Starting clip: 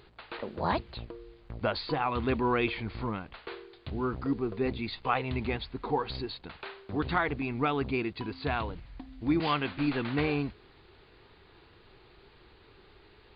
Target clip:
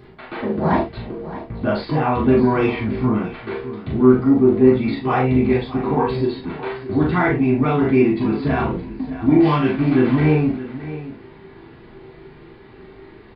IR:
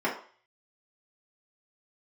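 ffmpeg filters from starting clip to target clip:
-filter_complex "[0:a]bass=f=250:g=14,treble=f=4000:g=6,asplit=2[s0][s1];[s1]alimiter=limit=0.158:level=0:latency=1:release=309,volume=1.19[s2];[s0][s2]amix=inputs=2:normalize=0,asoftclip=type=tanh:threshold=0.299,asplit=2[s3][s4];[s4]adelay=39,volume=0.631[s5];[s3][s5]amix=inputs=2:normalize=0,aecho=1:1:619:0.2[s6];[1:a]atrim=start_sample=2205,atrim=end_sample=3528[s7];[s6][s7]afir=irnorm=-1:irlink=0,volume=0.355"

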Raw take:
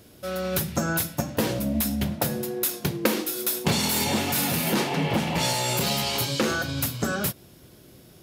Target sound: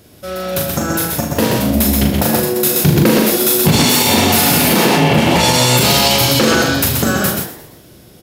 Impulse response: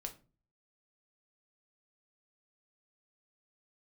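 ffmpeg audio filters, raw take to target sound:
-filter_complex "[0:a]asplit=2[s0][s1];[s1]adelay=40,volume=0.562[s2];[s0][s2]amix=inputs=2:normalize=0,asplit=2[s3][s4];[s4]aecho=0:1:75.8|128.3:0.251|0.631[s5];[s3][s5]amix=inputs=2:normalize=0,dynaudnorm=f=290:g=11:m=3.76,asettb=1/sr,asplit=3[s6][s7][s8];[s6]atrim=end=2.634[s9];[s7]atrim=start=2.63:end=3.76,asetpts=PTS-STARTPTS,afade=t=in:d=0.004:c=qsin,afade=t=out:st=1.126:d=0.004:c=qsin,equalizer=f=130:t=o:w=2.2:g=8.5[s10];[s8]atrim=start=3.756[s11];[s9][s10]acrossfade=d=0.004:c1=hsin:c2=qsin[s12];[s12][s11]acrossfade=d=0.004:c1=qsin:c2=hsin,asplit=2[s13][s14];[s14]asplit=4[s15][s16][s17][s18];[s15]adelay=114,afreqshift=130,volume=0.211[s19];[s16]adelay=228,afreqshift=260,volume=0.0871[s20];[s17]adelay=342,afreqshift=390,volume=0.0355[s21];[s18]adelay=456,afreqshift=520,volume=0.0146[s22];[s19][s20][s21][s22]amix=inputs=4:normalize=0[s23];[s13][s23]amix=inputs=2:normalize=0,alimiter=level_in=2:limit=0.891:release=50:level=0:latency=1,volume=0.891"

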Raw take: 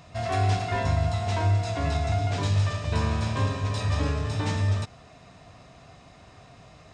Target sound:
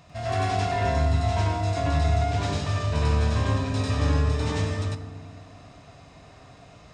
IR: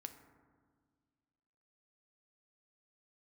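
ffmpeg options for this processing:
-filter_complex "[0:a]asplit=2[s0][s1];[1:a]atrim=start_sample=2205,adelay=96[s2];[s1][s2]afir=irnorm=-1:irlink=0,volume=2.24[s3];[s0][s3]amix=inputs=2:normalize=0,volume=0.708"

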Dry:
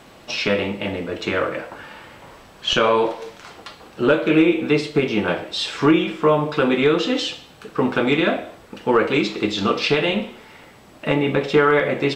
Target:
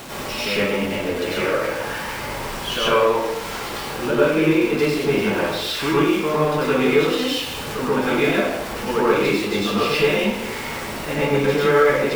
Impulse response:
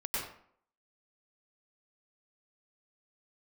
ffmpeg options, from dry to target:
-filter_complex "[0:a]aeval=exprs='val(0)+0.5*0.0841*sgn(val(0))':c=same[s0];[1:a]atrim=start_sample=2205[s1];[s0][s1]afir=irnorm=-1:irlink=0,volume=0.473"

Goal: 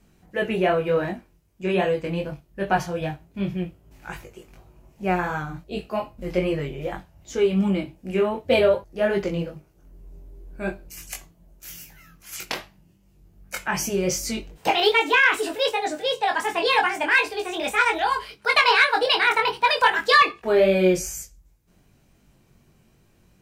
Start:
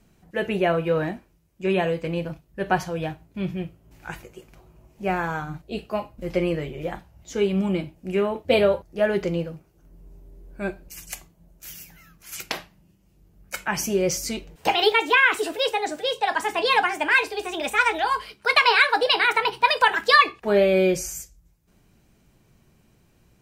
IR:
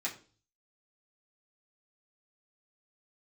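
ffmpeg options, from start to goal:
-filter_complex "[0:a]flanger=delay=20:depth=2.7:speed=2.6,asplit=2[s0][s1];[s1]acontrast=84,volume=1.33[s2];[s0][s2]amix=inputs=2:normalize=0,volume=0.376"

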